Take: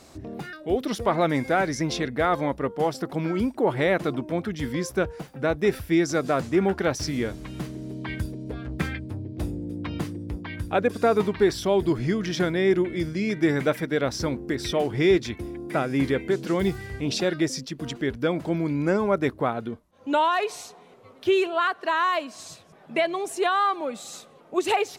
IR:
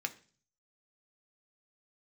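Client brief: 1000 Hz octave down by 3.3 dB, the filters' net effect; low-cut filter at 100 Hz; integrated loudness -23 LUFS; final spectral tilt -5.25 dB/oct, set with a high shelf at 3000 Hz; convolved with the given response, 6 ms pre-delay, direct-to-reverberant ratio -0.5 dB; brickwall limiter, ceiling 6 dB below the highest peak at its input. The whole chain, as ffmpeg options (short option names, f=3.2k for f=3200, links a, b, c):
-filter_complex "[0:a]highpass=100,equalizer=f=1k:t=o:g=-3.5,highshelf=f=3k:g=-7.5,alimiter=limit=-16.5dB:level=0:latency=1,asplit=2[a][b];[1:a]atrim=start_sample=2205,adelay=6[c];[b][c]afir=irnorm=-1:irlink=0,volume=-1.5dB[d];[a][d]amix=inputs=2:normalize=0,volume=3.5dB"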